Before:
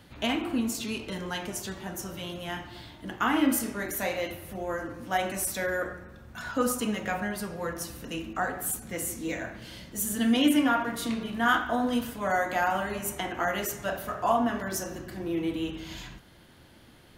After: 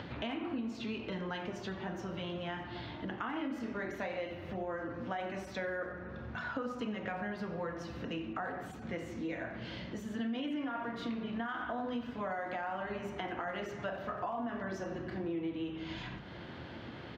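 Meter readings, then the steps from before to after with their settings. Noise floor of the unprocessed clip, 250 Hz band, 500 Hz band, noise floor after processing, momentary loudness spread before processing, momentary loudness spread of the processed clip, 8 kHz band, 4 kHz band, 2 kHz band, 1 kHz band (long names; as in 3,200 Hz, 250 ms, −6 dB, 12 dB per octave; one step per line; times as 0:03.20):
−54 dBFS, −9.0 dB, −7.0 dB, −47 dBFS, 12 LU, 5 LU, −26.5 dB, −11.0 dB, −9.5 dB, −10.0 dB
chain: high-pass filter 82 Hz
parametric band 9,900 Hz −8.5 dB 1.2 octaves
mains-hum notches 50/100/150/200/250/300 Hz
upward compression, threshold −34 dBFS
brickwall limiter −20.5 dBFS, peak gain reduction 10 dB
downward compressor 6 to 1, threshold −34 dBFS, peak gain reduction 10 dB
high-frequency loss of the air 200 metres
far-end echo of a speakerphone 90 ms, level −15 dB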